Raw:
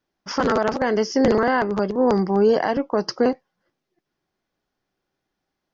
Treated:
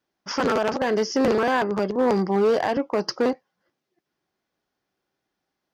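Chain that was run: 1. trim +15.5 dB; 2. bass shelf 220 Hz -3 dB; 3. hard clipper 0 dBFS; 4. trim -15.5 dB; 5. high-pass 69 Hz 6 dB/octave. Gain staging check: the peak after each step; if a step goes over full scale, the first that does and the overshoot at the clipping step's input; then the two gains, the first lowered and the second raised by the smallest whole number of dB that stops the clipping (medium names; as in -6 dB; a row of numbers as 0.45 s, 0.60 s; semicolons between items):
+7.5 dBFS, +7.5 dBFS, 0.0 dBFS, -15.5 dBFS, -13.5 dBFS; step 1, 7.5 dB; step 1 +7.5 dB, step 4 -7.5 dB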